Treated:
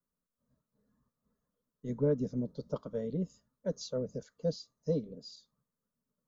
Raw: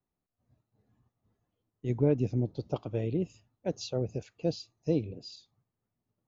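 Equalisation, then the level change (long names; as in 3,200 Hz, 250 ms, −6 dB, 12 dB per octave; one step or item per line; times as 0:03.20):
phaser with its sweep stopped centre 510 Hz, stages 8
0.0 dB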